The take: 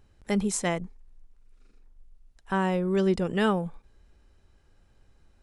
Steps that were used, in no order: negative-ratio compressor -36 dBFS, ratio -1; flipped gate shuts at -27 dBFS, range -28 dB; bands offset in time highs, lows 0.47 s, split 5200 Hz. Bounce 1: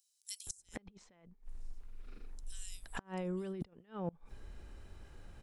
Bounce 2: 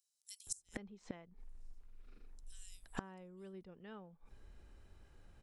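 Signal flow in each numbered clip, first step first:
bands offset in time > negative-ratio compressor > flipped gate; bands offset in time > flipped gate > negative-ratio compressor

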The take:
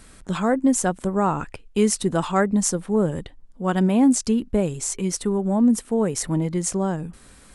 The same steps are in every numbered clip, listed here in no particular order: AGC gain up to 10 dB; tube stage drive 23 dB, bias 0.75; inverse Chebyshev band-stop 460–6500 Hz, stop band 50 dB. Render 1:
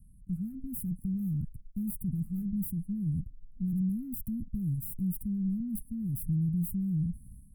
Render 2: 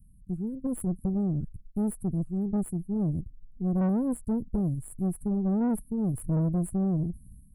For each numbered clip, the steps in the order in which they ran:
AGC > tube stage > inverse Chebyshev band-stop; AGC > inverse Chebyshev band-stop > tube stage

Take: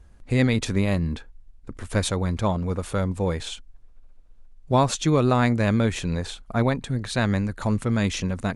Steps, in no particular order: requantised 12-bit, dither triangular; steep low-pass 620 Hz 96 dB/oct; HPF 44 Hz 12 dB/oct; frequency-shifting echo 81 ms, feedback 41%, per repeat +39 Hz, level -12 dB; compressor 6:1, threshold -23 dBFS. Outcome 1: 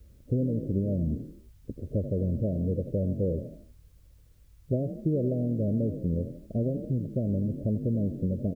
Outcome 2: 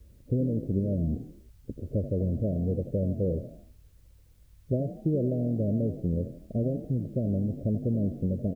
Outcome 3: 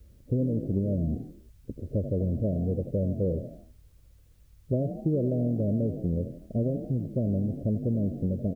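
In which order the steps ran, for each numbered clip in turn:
frequency-shifting echo > compressor > steep low-pass > requantised > HPF; compressor > steep low-pass > requantised > frequency-shifting echo > HPF; steep low-pass > frequency-shifting echo > compressor > requantised > HPF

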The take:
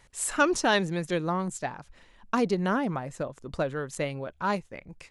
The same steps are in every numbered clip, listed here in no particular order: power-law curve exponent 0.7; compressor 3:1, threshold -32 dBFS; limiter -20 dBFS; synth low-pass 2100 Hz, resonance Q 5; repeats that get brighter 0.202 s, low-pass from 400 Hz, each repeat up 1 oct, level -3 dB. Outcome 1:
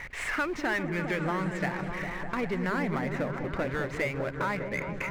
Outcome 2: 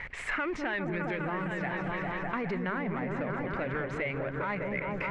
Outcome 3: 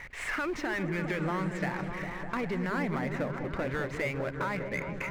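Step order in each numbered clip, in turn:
synth low-pass > power-law curve > compressor > limiter > repeats that get brighter; power-law curve > repeats that get brighter > limiter > synth low-pass > compressor; synth low-pass > limiter > power-law curve > compressor > repeats that get brighter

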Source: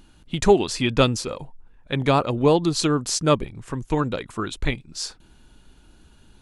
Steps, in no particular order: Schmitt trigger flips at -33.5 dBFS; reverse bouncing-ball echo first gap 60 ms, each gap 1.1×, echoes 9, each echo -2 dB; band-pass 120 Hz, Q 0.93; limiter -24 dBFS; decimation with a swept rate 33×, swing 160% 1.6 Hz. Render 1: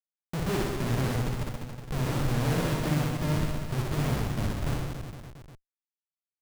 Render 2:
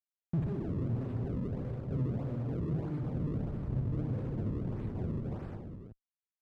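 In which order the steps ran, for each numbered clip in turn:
band-pass > decimation with a swept rate > Schmitt trigger > limiter > reverse bouncing-ball echo; Schmitt trigger > reverse bouncing-ball echo > decimation with a swept rate > limiter > band-pass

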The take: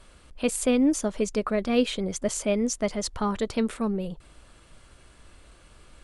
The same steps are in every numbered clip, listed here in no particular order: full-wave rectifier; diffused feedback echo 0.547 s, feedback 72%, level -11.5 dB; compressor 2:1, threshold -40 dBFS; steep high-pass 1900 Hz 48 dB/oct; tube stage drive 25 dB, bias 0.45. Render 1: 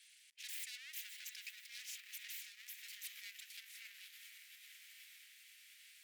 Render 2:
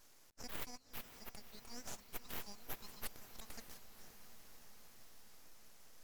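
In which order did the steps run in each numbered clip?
full-wave rectifier > diffused feedback echo > tube stage > compressor > steep high-pass; compressor > steep high-pass > tube stage > full-wave rectifier > diffused feedback echo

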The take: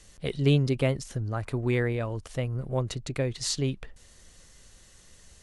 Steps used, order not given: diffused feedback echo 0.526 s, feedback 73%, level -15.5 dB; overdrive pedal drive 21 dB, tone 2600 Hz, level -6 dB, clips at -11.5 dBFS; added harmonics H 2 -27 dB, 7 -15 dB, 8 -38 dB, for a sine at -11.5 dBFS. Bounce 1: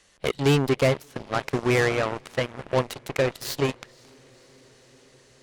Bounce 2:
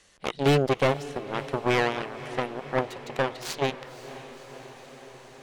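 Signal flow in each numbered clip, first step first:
overdrive pedal > diffused feedback echo > added harmonics; added harmonics > overdrive pedal > diffused feedback echo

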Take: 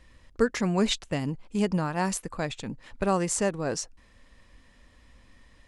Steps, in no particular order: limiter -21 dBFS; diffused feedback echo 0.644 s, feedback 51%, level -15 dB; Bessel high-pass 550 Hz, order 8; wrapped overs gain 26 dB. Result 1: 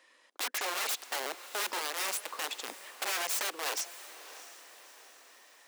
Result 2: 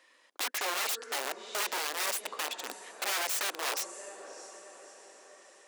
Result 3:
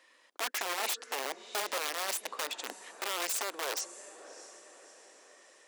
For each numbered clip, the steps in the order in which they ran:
wrapped overs > Bessel high-pass > limiter > diffused feedback echo; diffused feedback echo > wrapped overs > limiter > Bessel high-pass; limiter > diffused feedback echo > wrapped overs > Bessel high-pass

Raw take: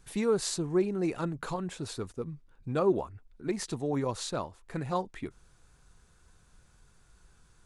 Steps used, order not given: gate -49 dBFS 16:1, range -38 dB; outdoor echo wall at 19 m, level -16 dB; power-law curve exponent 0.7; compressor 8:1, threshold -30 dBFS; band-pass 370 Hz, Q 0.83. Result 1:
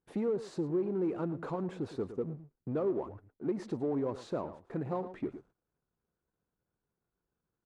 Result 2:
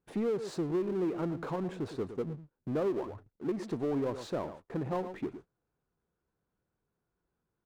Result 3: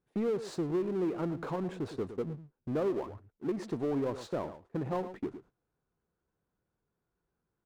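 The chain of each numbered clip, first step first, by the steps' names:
gate > compressor > outdoor echo > power-law curve > band-pass; outdoor echo > gate > band-pass > compressor > power-law curve; band-pass > gate > compressor > outdoor echo > power-law curve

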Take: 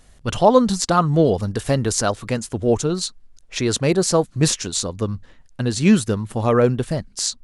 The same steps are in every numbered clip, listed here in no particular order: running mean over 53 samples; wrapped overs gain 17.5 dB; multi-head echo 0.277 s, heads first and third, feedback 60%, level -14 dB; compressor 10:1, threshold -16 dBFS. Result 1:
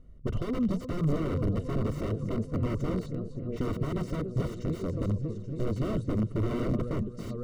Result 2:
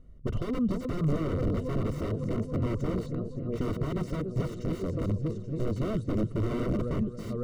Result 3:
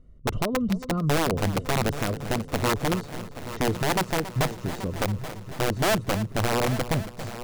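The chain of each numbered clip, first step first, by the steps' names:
compressor > multi-head echo > wrapped overs > running mean; multi-head echo > compressor > wrapped overs > running mean; compressor > running mean > wrapped overs > multi-head echo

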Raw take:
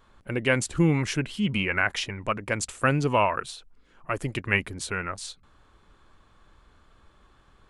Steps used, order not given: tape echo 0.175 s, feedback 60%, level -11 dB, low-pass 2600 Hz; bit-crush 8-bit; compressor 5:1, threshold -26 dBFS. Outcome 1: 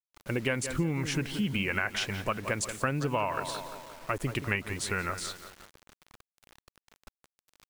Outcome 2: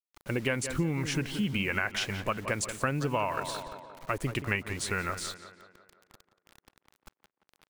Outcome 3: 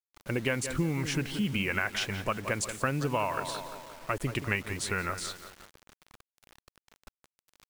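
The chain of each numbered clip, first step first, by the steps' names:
tape echo > bit-crush > compressor; bit-crush > tape echo > compressor; tape echo > compressor > bit-crush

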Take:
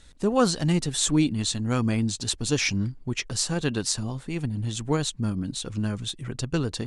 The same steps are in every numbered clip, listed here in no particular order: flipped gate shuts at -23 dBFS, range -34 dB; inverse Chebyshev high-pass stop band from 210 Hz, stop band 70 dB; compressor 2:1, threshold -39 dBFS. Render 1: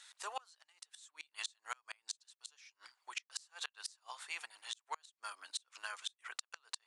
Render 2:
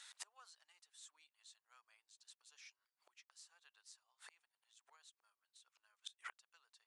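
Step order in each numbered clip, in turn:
inverse Chebyshev high-pass > flipped gate > compressor; flipped gate > inverse Chebyshev high-pass > compressor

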